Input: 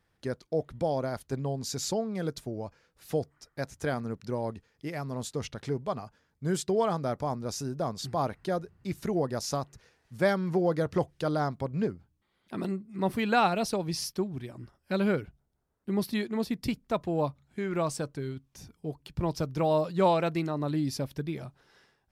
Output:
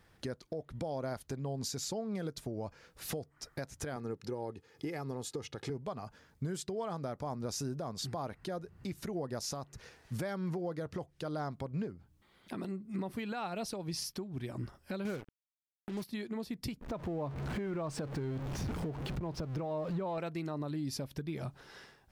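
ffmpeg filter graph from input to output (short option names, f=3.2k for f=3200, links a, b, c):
-filter_complex "[0:a]asettb=1/sr,asplit=3[a][b][c];[a]atrim=end=3.964[d];[b]atrim=start=3.96:end=5.7,asetpts=PTS-STARTPTS,afade=t=in:d=0.004:c=qsin,afade=t=out:st=1.736:d=0.004:c=qsin,highpass=160,lowshelf=f=440:g=6.5,aecho=1:1:2.4:0.52,atrim=end_sample=76734[e];[c]atrim=start=5.696[f];[d][e]acrossfade=d=0.004:c1=hsin:c2=qsin[g];[g][f]acrossfade=d=0.004:c1=qsin:c2=hsin,asettb=1/sr,asplit=3[h][i][j];[h]atrim=end=15.054[k];[i]atrim=start=15.05:end=16.04,asetpts=PTS-STARTPTS,afade=t=in:d=0.004:c=qsin,afade=t=out:st=0.986:d=0.004:c=qsin,acontrast=71,acrusher=bits=4:mix=0:aa=0.5[l];[j]atrim=start=16.036[m];[k][l]acrossfade=d=0.004:c1=hsin:c2=qsin[n];[n][m]acrossfade=d=0.004:c1=qsin:c2=hsin,asettb=1/sr,asplit=3[o][p][q];[o]atrim=end=16.814[r];[p]atrim=start=16.81:end=20.18,asetpts=PTS-STARTPTS,afade=t=in:d=0.004:c=qsin,afade=t=out:st=3.366:d=0.004:c=qsin,aeval=exprs='val(0)+0.5*0.0119*sgn(val(0))':c=same,lowpass=f=1.5k:p=1,acompressor=threshold=-39dB:ratio=2:attack=3.2:release=140:knee=1:detection=peak[s];[q]atrim=start=20.176[t];[r][s]acrossfade=d=0.004:c1=hsin:c2=qsin[u];[u][t]acrossfade=d=0.004:c1=qsin:c2=hsin,acompressor=threshold=-42dB:ratio=4,alimiter=level_in=13dB:limit=-24dB:level=0:latency=1:release=269,volume=-13dB,volume=8.5dB"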